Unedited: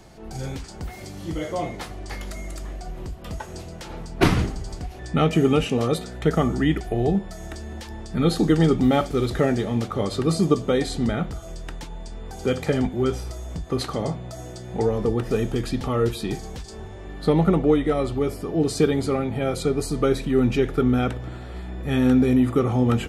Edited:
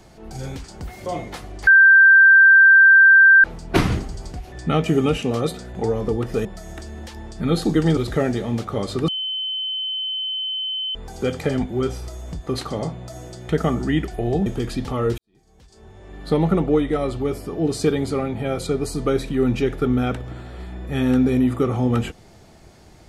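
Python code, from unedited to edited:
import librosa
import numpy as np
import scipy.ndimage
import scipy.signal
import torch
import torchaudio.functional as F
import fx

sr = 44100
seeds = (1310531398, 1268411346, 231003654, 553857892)

y = fx.edit(x, sr, fx.cut(start_s=1.06, length_s=0.47),
    fx.bleep(start_s=2.14, length_s=1.77, hz=1570.0, db=-7.0),
    fx.swap(start_s=6.22, length_s=0.97, other_s=14.72, other_length_s=0.7),
    fx.cut(start_s=8.71, length_s=0.49),
    fx.bleep(start_s=10.31, length_s=1.87, hz=3060.0, db=-23.0),
    fx.fade_in_span(start_s=16.14, length_s=1.09, curve='qua'), tone=tone)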